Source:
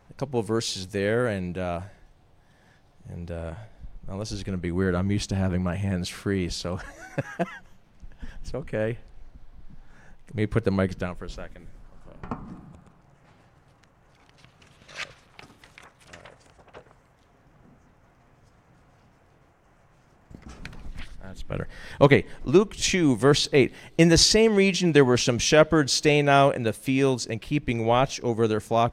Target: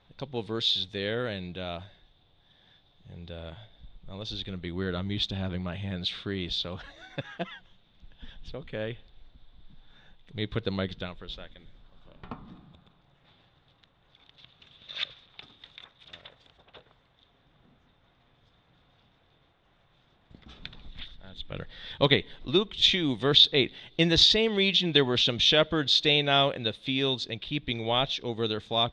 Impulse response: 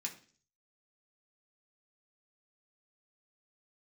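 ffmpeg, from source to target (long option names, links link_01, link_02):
-af "lowpass=frequency=3600:width_type=q:width=13,volume=-7.5dB"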